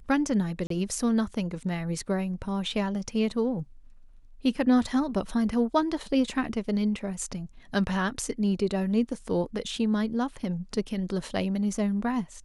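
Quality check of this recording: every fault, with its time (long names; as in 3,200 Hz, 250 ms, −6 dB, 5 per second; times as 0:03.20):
0:00.67–0:00.70: drop-out 33 ms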